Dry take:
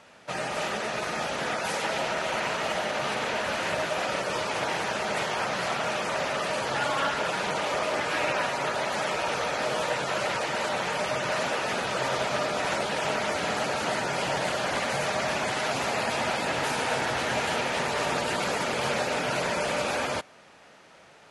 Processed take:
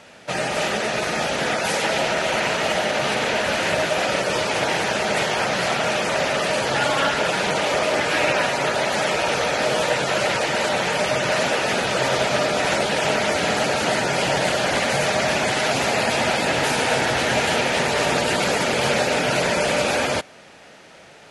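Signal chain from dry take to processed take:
parametric band 1,100 Hz −5.5 dB 0.7 octaves
level +8.5 dB

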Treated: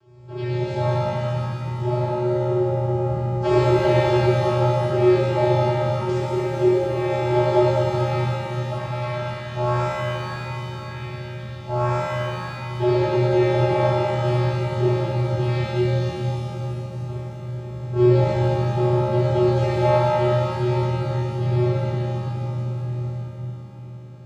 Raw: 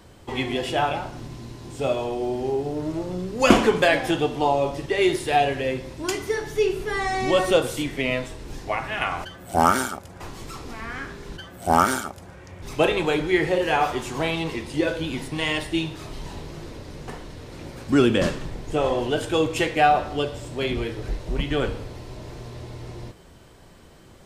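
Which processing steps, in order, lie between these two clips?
channel vocoder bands 8, square 122 Hz
reverb with rising layers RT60 3.1 s, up +7 semitones, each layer −8 dB, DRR −11.5 dB
level −8.5 dB

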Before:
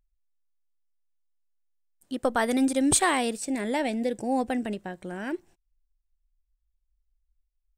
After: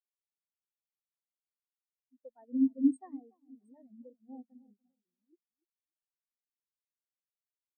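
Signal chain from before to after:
echo with a time of its own for lows and highs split 1,700 Hz, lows 289 ms, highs 718 ms, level −6 dB
every bin expanded away from the loudest bin 4 to 1
level −7 dB

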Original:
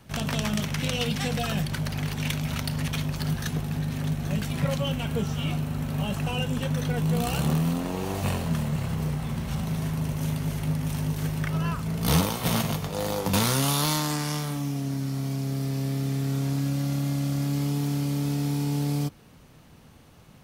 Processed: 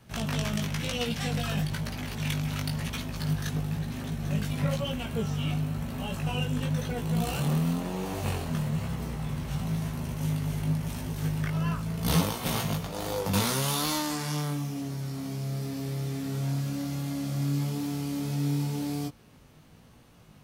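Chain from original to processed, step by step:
chorus effect 1 Hz, delay 16.5 ms, depth 4.1 ms

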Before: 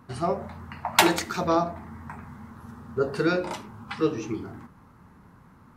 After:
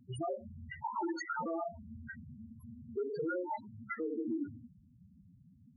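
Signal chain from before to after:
noise reduction from a noise print of the clip's start 12 dB
spectral peaks only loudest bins 4
downward compressor 4 to 1, threshold −35 dBFS, peak gain reduction 13.5 dB
brickwall limiter −37 dBFS, peak gain reduction 11.5 dB
level +7.5 dB

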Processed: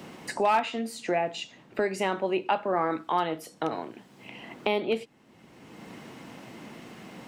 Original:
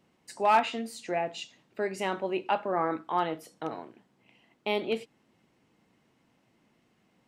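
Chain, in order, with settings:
multiband upward and downward compressor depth 70%
level +3 dB

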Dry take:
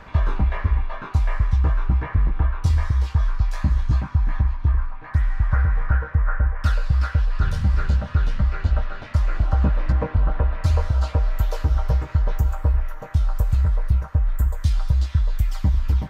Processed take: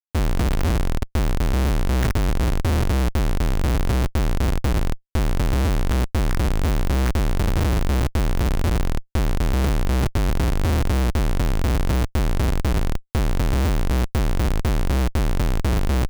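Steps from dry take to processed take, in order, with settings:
graphic EQ with 10 bands 125 Hz +4 dB, 250 Hz −3 dB, 500 Hz −12 dB, 1,000 Hz −6 dB, 2,000 Hz +10 dB, 4,000 Hz −3 dB
comparator with hysteresis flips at −24.5 dBFS

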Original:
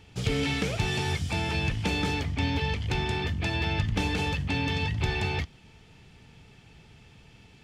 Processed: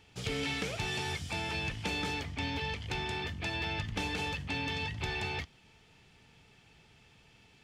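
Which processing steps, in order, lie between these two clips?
low-shelf EQ 330 Hz −7.5 dB
level −4 dB

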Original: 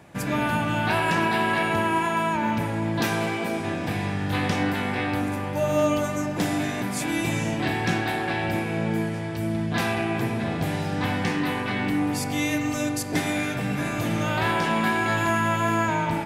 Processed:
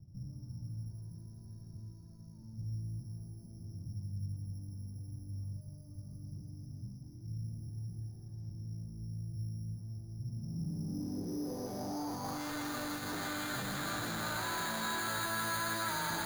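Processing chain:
parametric band 460 Hz −5 dB 0.23 octaves
hum removal 50.63 Hz, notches 3
tube saturation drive 42 dB, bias 0.75
low-pass filter sweep 110 Hz → 1,500 Hz, 0:10.23–0:12.55
bad sample-rate conversion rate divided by 8×, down none, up hold
delay with a high-pass on its return 163 ms, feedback 85%, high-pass 2,000 Hz, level −3 dB
level +2.5 dB

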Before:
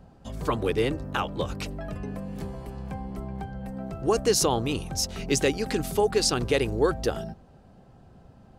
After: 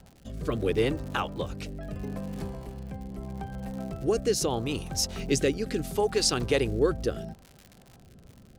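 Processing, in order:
surface crackle 110 per second −36 dBFS
rotating-speaker cabinet horn 0.75 Hz

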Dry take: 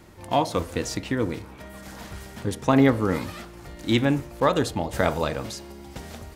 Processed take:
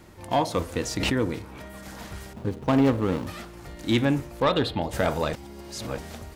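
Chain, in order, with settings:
0:02.33–0:03.27: running median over 25 samples
0:04.42–0:04.82: high shelf with overshoot 4,900 Hz −9 dB, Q 3
soft clipping −12 dBFS, distortion −17 dB
0:00.97–0:01.68: background raised ahead of every attack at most 26 dB per second
0:05.33–0:05.98: reverse

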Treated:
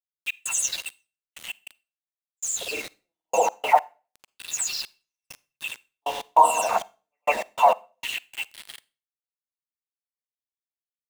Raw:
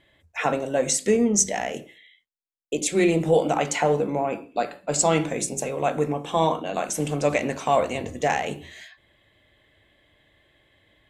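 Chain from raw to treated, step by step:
every frequency bin delayed by itself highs early, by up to 432 ms
low-shelf EQ 190 Hz −8 dB
hum removal 156.1 Hz, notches 19
in parallel at 0 dB: downward compressor 4 to 1, threshold −34 dBFS, peak gain reduction 15.5 dB
on the sum: auto-filter high-pass square 0.25 Hz 750–3,200 Hz
granular cloud, grains 20 per second
hollow resonant body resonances 210/940/2,700 Hz, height 17 dB, ringing for 90 ms
centre clipping without the shift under −32.5 dBFS
gate pattern ".x.xxx...x.x." 99 BPM −60 dB
on a send at −22.5 dB: convolution reverb RT60 0.35 s, pre-delay 39 ms

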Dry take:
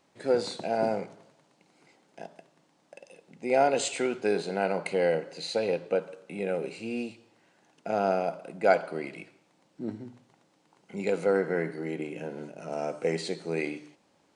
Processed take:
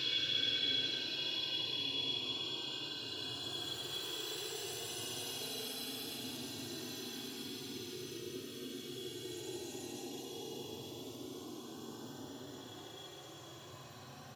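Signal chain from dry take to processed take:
frequency axis turned over on the octave scale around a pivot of 1,500 Hz
three-band delay without the direct sound highs, lows, mids 30/780 ms, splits 520/5,500 Hz
convolution reverb RT60 1.1 s, pre-delay 3 ms, DRR 0.5 dB
auto-filter notch saw up 3.2 Hz 210–2,500 Hz
extreme stretch with random phases 28×, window 0.05 s, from 0:02.05
level +8 dB

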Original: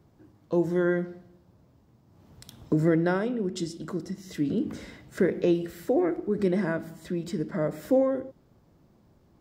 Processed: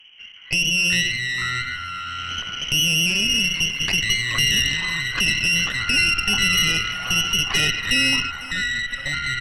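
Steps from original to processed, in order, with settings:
camcorder AGC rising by 8.5 dB per second
treble cut that deepens with the level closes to 440 Hz, closed at −23 dBFS
brickwall limiter −22.5 dBFS, peak gain reduction 11 dB
mains-hum notches 60/120/180 Hz
voice inversion scrambler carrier 3,100 Hz
harmonic generator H 4 −15 dB, 5 −12 dB, 8 −13 dB, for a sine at −16 dBFS
on a send: repeating echo 499 ms, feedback 39%, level −17 dB
on the sum: delay with pitch and tempo change per echo 182 ms, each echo −6 semitones, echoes 2, each echo −6 dB
level +3.5 dB

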